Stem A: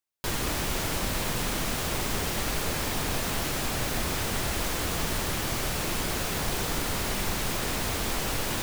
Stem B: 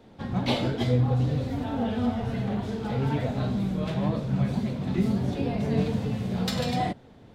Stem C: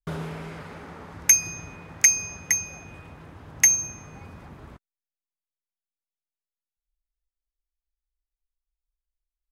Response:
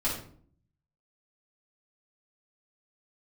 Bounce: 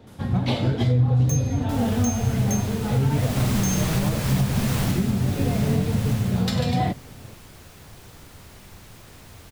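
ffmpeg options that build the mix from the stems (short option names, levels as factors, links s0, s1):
-filter_complex "[0:a]dynaudnorm=f=180:g=3:m=1.41,adelay=1450,volume=0.841,afade=t=in:st=3.09:d=0.36:silence=0.334965,afade=t=out:st=4.78:d=0.39:silence=0.473151,afade=t=out:st=6.11:d=0.42:silence=0.223872[s0];[1:a]volume=1.33[s1];[2:a]aderivative,asoftclip=type=hard:threshold=0.0944,volume=0.531[s2];[s0][s1][s2]amix=inputs=3:normalize=0,equalizer=f=100:t=o:w=1.3:g=9,alimiter=limit=0.251:level=0:latency=1:release=292"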